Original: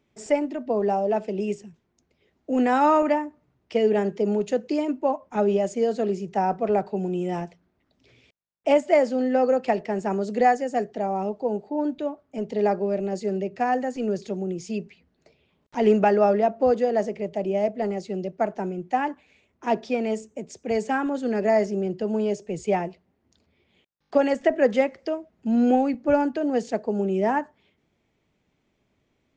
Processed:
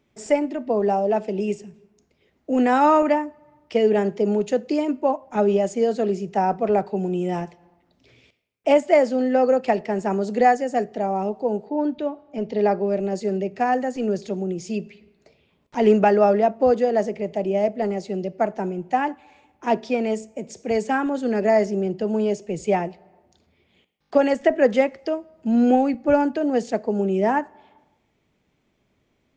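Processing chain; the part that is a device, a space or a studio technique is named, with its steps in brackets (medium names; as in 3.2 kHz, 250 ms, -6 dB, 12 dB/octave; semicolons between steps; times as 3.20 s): 11.65–12.87 s: low-pass 5.8 kHz 24 dB/octave; compressed reverb return (on a send at -12.5 dB: reverberation RT60 0.80 s, pre-delay 25 ms + compression 6:1, threshold -35 dBFS, peak gain reduction 20 dB); on the sum: trim +2.5 dB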